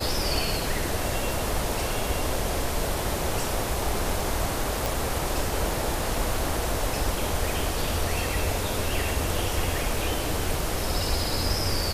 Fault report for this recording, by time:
0:04.86: click

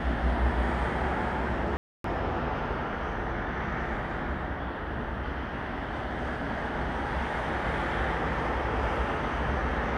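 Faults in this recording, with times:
0:01.77–0:02.04: drop-out 273 ms

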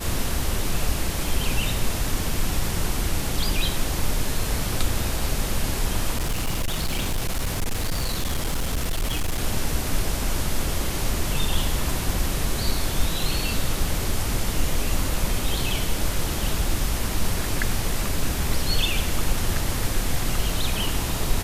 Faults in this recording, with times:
0:06.18–0:09.43: clipping −20 dBFS

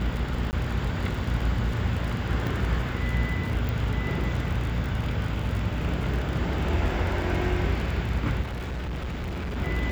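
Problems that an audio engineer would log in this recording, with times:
mains buzz 60 Hz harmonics 36 −31 dBFS
surface crackle 43 per second −31 dBFS
0:00.51–0:00.53: drop-out 19 ms
0:02.47: click
0:03.69: click
0:08.41–0:09.58: clipping −28.5 dBFS

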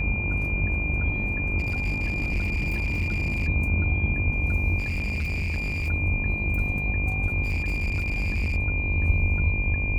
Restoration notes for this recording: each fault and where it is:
mains buzz 50 Hz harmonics 22 −30 dBFS
whistle 2,400 Hz −28 dBFS
0:01.58–0:03.48: clipping −21.5 dBFS
0:04.78–0:05.89: clipping −24 dBFS
0:07.44–0:08.57: clipping −22 dBFS

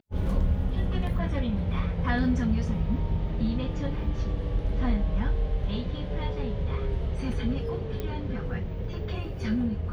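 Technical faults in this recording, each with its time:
0:08.00: click −20 dBFS

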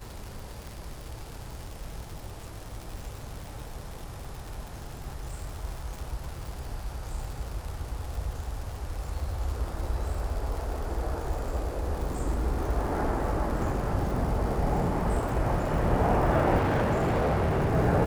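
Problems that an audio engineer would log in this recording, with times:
surface crackle 160 per second −35 dBFS
0:16.57–0:17.73: clipping −22 dBFS

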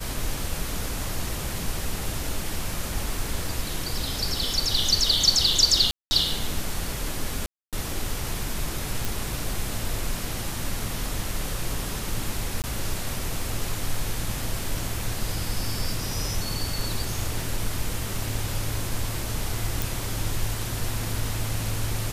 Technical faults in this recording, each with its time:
0:05.91–0:06.11: drop-out 200 ms
0:07.46–0:07.73: drop-out 267 ms
0:09.05: click
0:12.62–0:12.64: drop-out 18 ms
0:19.82: click

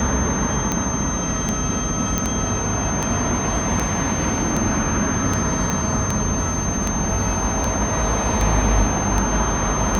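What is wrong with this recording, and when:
scratch tick 78 rpm −7 dBFS
whistle 6,300 Hz −26 dBFS
0:02.18: click −6 dBFS
0:05.70: click −8 dBFS

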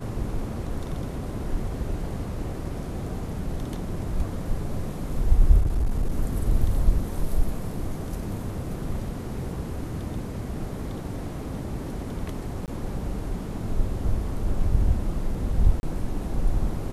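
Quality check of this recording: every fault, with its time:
0:05.61–0:06.11: clipping −19 dBFS
0:12.66–0:12.68: drop-out 18 ms
0:15.80–0:15.83: drop-out 31 ms

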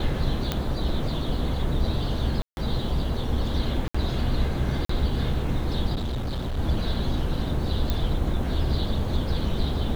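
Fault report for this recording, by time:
0:00.52: click −10 dBFS
0:02.42–0:02.57: drop-out 151 ms
0:03.88–0:03.94: drop-out 65 ms
0:04.85–0:04.89: drop-out 44 ms
0:05.94–0:06.59: clipping −25 dBFS
0:07.90: click −12 dBFS

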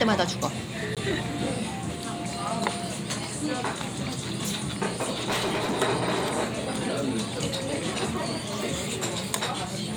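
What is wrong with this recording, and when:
0:00.95–0:00.97: drop-out 17 ms
0:05.00–0:05.82: clipping −23.5 dBFS

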